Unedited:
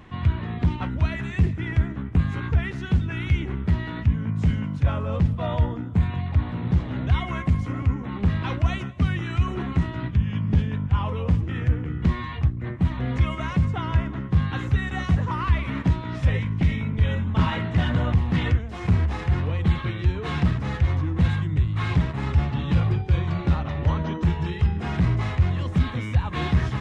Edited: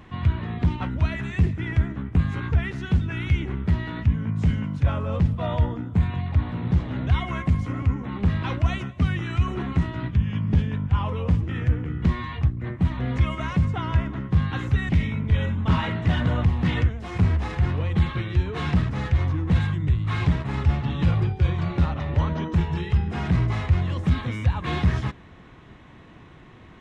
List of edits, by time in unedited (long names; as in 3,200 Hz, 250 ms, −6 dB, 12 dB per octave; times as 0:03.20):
0:14.89–0:16.58: remove